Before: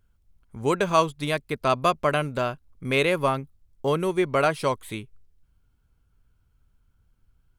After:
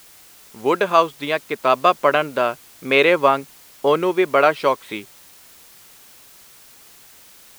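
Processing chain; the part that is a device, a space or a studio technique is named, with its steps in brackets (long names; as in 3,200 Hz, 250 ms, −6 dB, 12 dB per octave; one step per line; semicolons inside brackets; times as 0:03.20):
dictaphone (band-pass filter 320–3,800 Hz; automatic gain control; tape wow and flutter; white noise bed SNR 26 dB)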